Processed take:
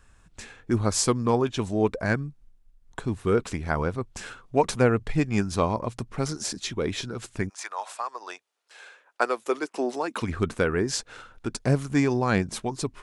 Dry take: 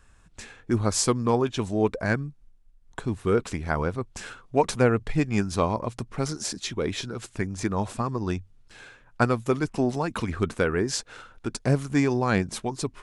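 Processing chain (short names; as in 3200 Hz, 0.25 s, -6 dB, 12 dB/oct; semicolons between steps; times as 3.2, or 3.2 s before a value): 7.48–10.21 HPF 810 Hz -> 260 Hz 24 dB/oct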